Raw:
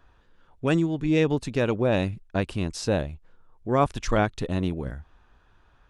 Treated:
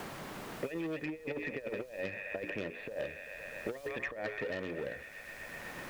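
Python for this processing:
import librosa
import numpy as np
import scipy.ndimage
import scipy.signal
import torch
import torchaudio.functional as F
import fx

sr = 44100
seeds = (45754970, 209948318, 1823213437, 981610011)

y = fx.low_shelf(x, sr, hz=350.0, db=-5.5)
y = fx.notch(y, sr, hz=530.0, q=12.0)
y = np.where(np.abs(y) >= 10.0 ** (-46.5 / 20.0), y, 0.0)
y = fx.formant_cascade(y, sr, vowel='e')
y = fx.hum_notches(y, sr, base_hz=60, count=7)
y = fx.echo_wet_highpass(y, sr, ms=125, feedback_pct=73, hz=1800.0, wet_db=-11.5)
y = fx.over_compress(y, sr, threshold_db=-43.0, ratio=-0.5)
y = 10.0 ** (-38.0 / 20.0) * np.tanh(y / 10.0 ** (-38.0 / 20.0))
y = fx.highpass(y, sr, hz=200.0, slope=6)
y = fx.high_shelf(y, sr, hz=2600.0, db=7.0)
y = fx.dmg_noise_colour(y, sr, seeds[0], colour='pink', level_db=-75.0)
y = fx.band_squash(y, sr, depth_pct=100)
y = y * librosa.db_to_amplitude(8.0)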